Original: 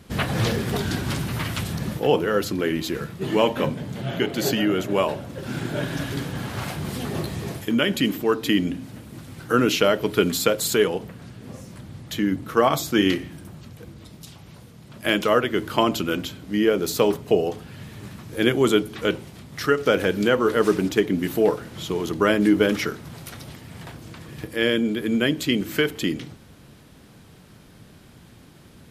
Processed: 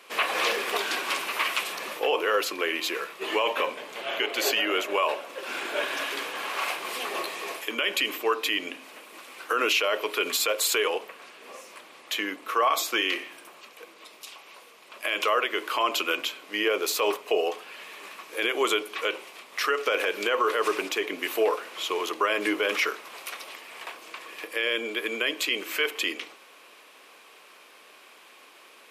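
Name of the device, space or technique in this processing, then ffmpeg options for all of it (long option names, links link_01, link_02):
laptop speaker: -af "highpass=frequency=430:width=0.5412,highpass=frequency=430:width=1.3066,equalizer=frequency=1100:width_type=o:width=0.25:gain=9.5,equalizer=frequency=2500:width_type=o:width=0.58:gain=10,alimiter=limit=-14dB:level=0:latency=1:release=52"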